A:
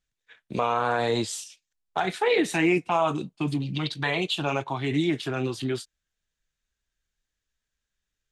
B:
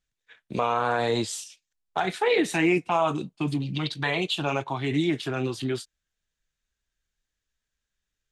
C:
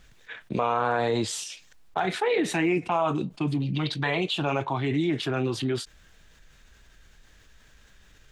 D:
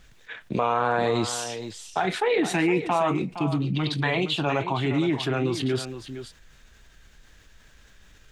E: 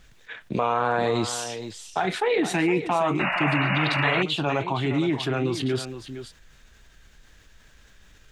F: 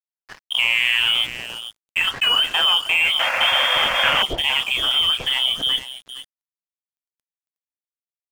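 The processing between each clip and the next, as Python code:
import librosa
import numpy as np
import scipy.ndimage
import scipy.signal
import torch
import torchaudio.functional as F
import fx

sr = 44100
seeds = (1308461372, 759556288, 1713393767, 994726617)

y1 = x
y2 = fx.high_shelf(y1, sr, hz=4300.0, db=-10.5)
y2 = fx.env_flatten(y2, sr, amount_pct=50)
y2 = F.gain(torch.from_numpy(y2), -2.5).numpy()
y3 = y2 + 10.0 ** (-11.0 / 20.0) * np.pad(y2, (int(464 * sr / 1000.0), 0))[:len(y2)]
y3 = F.gain(torch.from_numpy(y3), 1.5).numpy()
y4 = fx.spec_paint(y3, sr, seeds[0], shape='noise', start_s=3.19, length_s=1.04, low_hz=540.0, high_hz=2900.0, level_db=-26.0)
y5 = fx.freq_invert(y4, sr, carrier_hz=3400)
y5 = np.sign(y5) * np.maximum(np.abs(y5) - 10.0 ** (-39.0 / 20.0), 0.0)
y5 = F.gain(torch.from_numpy(y5), 5.5).numpy()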